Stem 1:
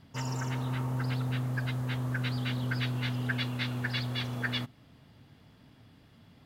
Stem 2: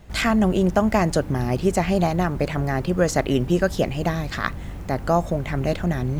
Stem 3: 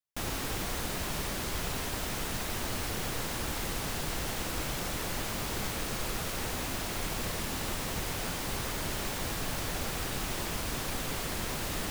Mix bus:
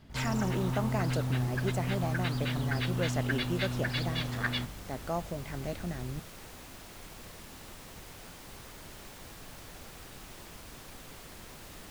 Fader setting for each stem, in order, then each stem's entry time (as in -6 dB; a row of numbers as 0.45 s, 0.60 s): -0.5 dB, -14.0 dB, -13.5 dB; 0.00 s, 0.00 s, 0.00 s